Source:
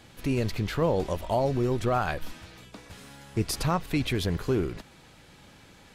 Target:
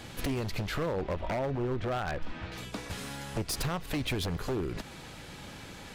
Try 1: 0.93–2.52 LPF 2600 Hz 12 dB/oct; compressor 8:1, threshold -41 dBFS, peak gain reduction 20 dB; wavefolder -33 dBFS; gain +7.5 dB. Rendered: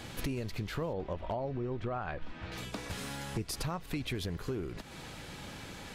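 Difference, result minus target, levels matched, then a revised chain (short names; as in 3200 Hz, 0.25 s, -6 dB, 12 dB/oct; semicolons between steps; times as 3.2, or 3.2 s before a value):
compressor: peak gain reduction +5.5 dB
0.93–2.52 LPF 2600 Hz 12 dB/oct; compressor 8:1, threshold -34.5 dBFS, peak gain reduction 14 dB; wavefolder -33 dBFS; gain +7.5 dB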